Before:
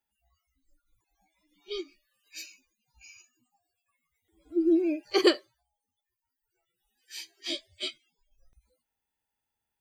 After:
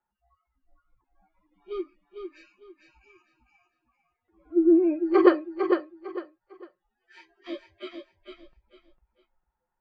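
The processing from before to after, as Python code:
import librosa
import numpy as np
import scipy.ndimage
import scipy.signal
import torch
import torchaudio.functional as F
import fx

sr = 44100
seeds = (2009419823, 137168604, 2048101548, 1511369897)

y = fx.lowpass_res(x, sr, hz=1200.0, q=2.3)
y = y + 0.49 * np.pad(y, (int(5.6 * sr / 1000.0), 0))[:len(y)]
y = fx.echo_feedback(y, sr, ms=452, feedback_pct=27, wet_db=-6)
y = y * librosa.db_to_amplitude(1.5)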